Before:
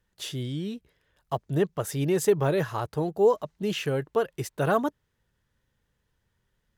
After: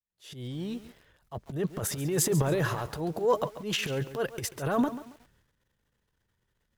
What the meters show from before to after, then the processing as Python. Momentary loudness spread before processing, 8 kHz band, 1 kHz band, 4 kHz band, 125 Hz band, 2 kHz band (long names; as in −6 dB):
11 LU, +5.0 dB, −3.5 dB, +1.0 dB, −1.5 dB, −1.0 dB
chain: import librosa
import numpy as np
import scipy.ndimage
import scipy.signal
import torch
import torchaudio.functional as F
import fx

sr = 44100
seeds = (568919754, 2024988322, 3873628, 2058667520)

y = fx.fade_in_head(x, sr, length_s=0.53)
y = fx.transient(y, sr, attack_db=-11, sustain_db=11)
y = fx.echo_crushed(y, sr, ms=138, feedback_pct=35, bits=7, wet_db=-13.0)
y = y * 10.0 ** (-3.0 / 20.0)